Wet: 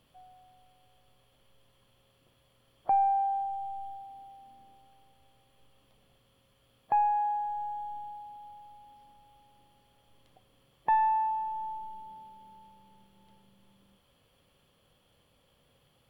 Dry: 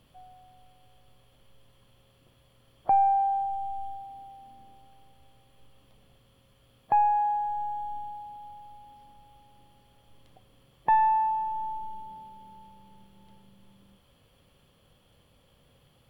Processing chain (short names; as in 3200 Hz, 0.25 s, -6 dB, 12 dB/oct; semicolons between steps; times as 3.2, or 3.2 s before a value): low shelf 220 Hz -5.5 dB; gain -3 dB